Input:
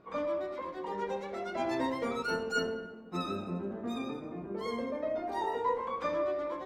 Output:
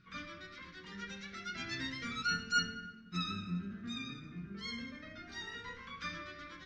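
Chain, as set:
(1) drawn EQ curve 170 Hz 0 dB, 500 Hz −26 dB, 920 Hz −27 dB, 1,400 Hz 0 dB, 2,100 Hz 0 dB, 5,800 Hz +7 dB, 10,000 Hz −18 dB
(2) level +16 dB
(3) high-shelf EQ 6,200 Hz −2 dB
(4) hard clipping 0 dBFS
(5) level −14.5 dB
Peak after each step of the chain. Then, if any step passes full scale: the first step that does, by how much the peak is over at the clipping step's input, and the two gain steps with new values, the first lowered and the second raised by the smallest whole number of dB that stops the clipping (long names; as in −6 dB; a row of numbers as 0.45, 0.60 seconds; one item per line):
−22.0, −6.0, −6.0, −6.0, −20.5 dBFS
no step passes full scale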